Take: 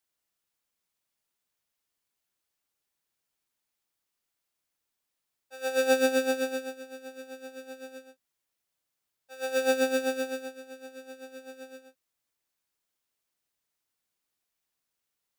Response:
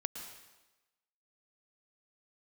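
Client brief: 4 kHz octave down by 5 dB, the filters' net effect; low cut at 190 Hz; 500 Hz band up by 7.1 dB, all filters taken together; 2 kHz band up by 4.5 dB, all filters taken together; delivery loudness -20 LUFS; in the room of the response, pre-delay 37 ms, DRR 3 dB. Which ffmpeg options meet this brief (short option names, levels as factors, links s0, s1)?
-filter_complex "[0:a]highpass=190,equalizer=f=500:t=o:g=7,equalizer=f=2000:t=o:g=8,equalizer=f=4000:t=o:g=-8.5,asplit=2[s0][s1];[1:a]atrim=start_sample=2205,adelay=37[s2];[s1][s2]afir=irnorm=-1:irlink=0,volume=0.708[s3];[s0][s3]amix=inputs=2:normalize=0,volume=1.5"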